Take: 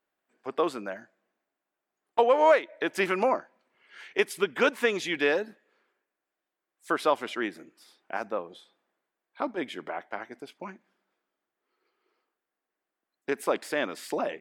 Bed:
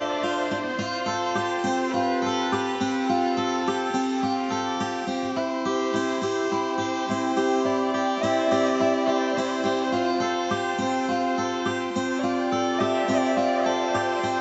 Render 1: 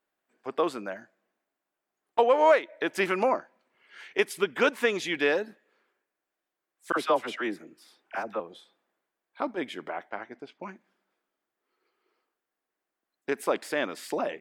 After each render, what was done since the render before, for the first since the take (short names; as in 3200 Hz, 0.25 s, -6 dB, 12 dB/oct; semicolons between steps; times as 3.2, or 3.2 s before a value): 6.92–8.4 dispersion lows, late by 48 ms, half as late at 900 Hz; 10.1–10.63 air absorption 120 m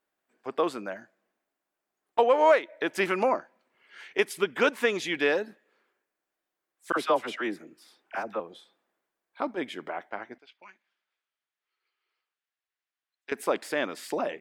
10.38–13.32 band-pass 3100 Hz, Q 1.1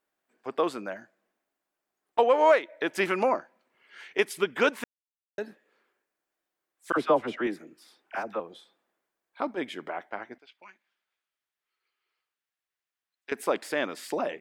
4.84–5.38 mute; 6.97–7.47 tilt -3 dB/oct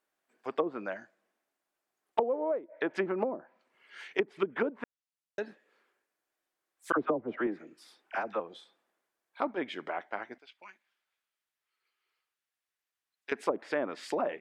treble ducked by the level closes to 360 Hz, closed at -21 dBFS; low shelf 320 Hz -4.5 dB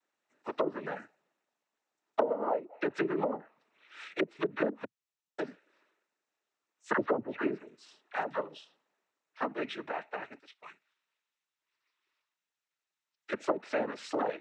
noise vocoder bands 12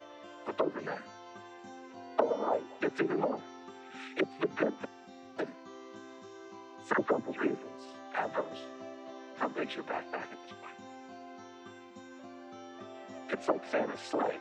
add bed -24 dB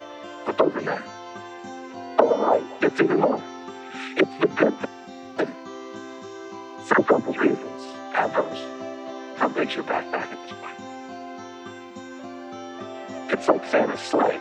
gain +11.5 dB; limiter -3 dBFS, peak gain reduction 1 dB